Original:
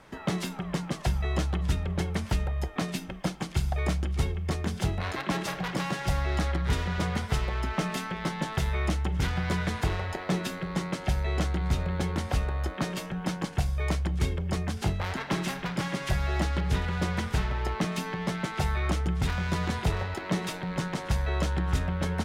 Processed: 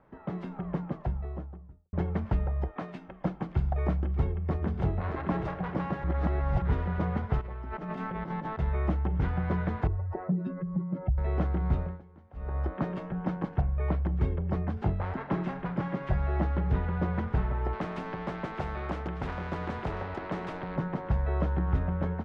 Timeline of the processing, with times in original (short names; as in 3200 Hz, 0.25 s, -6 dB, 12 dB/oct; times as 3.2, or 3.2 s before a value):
0.5–1.93 studio fade out
2.71–3.21 low shelf 380 Hz -11.5 dB
3.94–4.87 echo throw 0.6 s, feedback 45%, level -9 dB
6.04–6.62 reverse
7.41–8.59 negative-ratio compressor -35 dBFS
9.87–11.18 spectral contrast raised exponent 2.1
11.77–12.58 dip -23.5 dB, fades 0.24 s
13.6–14 LPF 2200 Hz -> 5300 Hz 24 dB/oct
17.73–20.76 spectral compressor 2:1
whole clip: AGC gain up to 7 dB; LPF 1200 Hz 12 dB/oct; gain -7 dB